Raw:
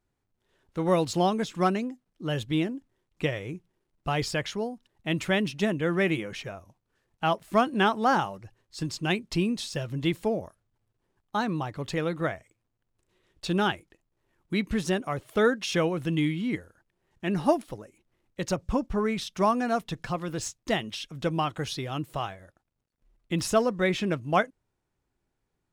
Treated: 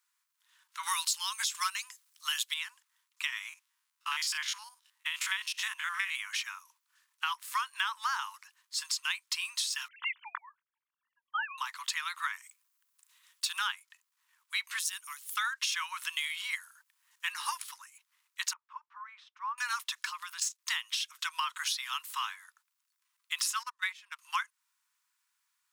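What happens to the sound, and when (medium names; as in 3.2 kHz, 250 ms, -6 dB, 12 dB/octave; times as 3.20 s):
0.83–2.54 s: treble shelf 3 kHz +12 dB
3.49–6.15 s: spectrogram pixelated in time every 50 ms
9.88–11.58 s: formants replaced by sine waves
12.33–13.59 s: treble shelf 7.6 kHz +8.5 dB
14.79–15.37 s: pre-emphasis filter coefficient 0.9
16.09–17.32 s: treble shelf 6.7 kHz +5.5 dB
18.53–19.58 s: ladder band-pass 740 Hz, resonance 20%
20.09–20.59 s: level held to a coarse grid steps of 12 dB
23.63–24.19 s: gate -24 dBFS, range -23 dB
whole clip: steep high-pass 950 Hz 96 dB/octave; treble shelf 4.1 kHz +10 dB; compression 6:1, threshold -33 dBFS; trim +3.5 dB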